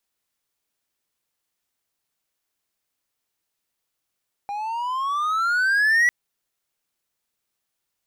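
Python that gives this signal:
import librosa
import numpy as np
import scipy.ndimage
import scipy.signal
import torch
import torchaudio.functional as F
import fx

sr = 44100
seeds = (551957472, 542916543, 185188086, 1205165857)

y = fx.riser_tone(sr, length_s=1.6, level_db=-12, wave='triangle', hz=801.0, rise_st=15.5, swell_db=12.5)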